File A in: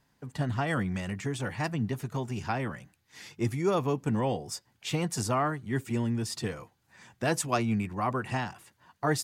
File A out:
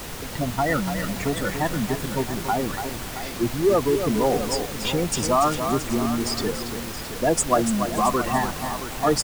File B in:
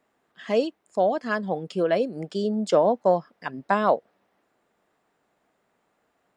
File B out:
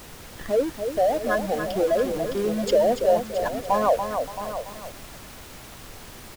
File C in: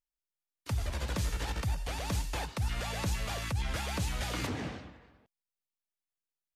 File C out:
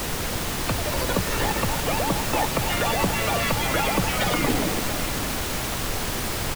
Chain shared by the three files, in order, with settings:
high-pass filter 160 Hz 12 dB per octave
notch filter 1,600 Hz, Q 21
gate on every frequency bin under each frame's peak −10 dB strong
bass and treble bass −6 dB, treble +1 dB
in parallel at −9.5 dB: comparator with hysteresis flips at −38 dBFS
on the sum: background noise pink −43 dBFS
on a send: single-tap delay 671 ms −12 dB
on the sum: feedback echo at a low word length 286 ms, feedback 35%, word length 7 bits, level −6.5 dB
loudness normalisation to −24 LKFS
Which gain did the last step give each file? +9.0, +0.5, +15.5 decibels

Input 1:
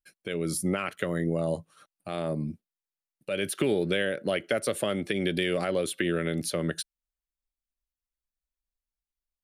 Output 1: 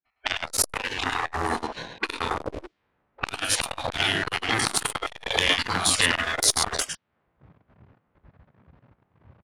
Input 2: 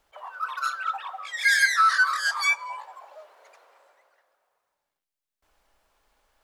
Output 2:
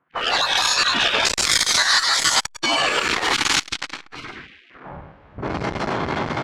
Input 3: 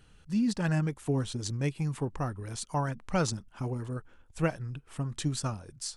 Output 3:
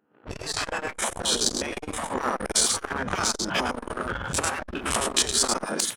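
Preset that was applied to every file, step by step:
spectrum averaged block by block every 50 ms
camcorder AGC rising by 61 dB per second
noise reduction from a noise print of the clip's start 11 dB
dynamic equaliser 2,200 Hz, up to −7 dB, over −44 dBFS, Q 2.7
single-tap delay 105 ms −5 dB
low-pass that shuts in the quiet parts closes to 1,100 Hz, open at −23.5 dBFS
downward compressor 12 to 1, threshold −29 dBFS
low-shelf EQ 140 Hz +9.5 dB
leveller curve on the samples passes 2
low-pass that shuts in the quiet parts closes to 2,600 Hz, open at −19.5 dBFS
gate on every frequency bin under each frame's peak −20 dB weak
saturating transformer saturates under 2,300 Hz
normalise the peak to −2 dBFS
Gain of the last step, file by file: +18.0, +23.5, +10.0 decibels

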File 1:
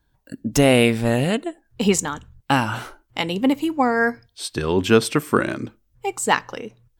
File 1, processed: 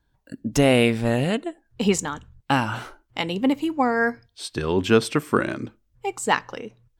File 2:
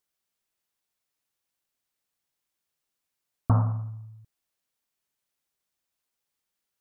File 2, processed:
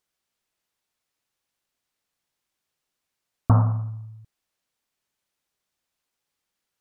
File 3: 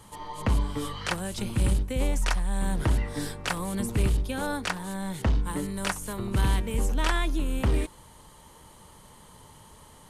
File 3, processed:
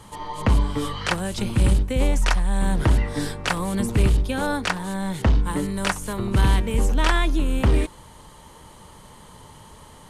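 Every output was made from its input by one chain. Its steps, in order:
high-shelf EQ 10,000 Hz −8.5 dB
loudness normalisation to −23 LKFS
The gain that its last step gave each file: −2.0, +4.5, +6.0 decibels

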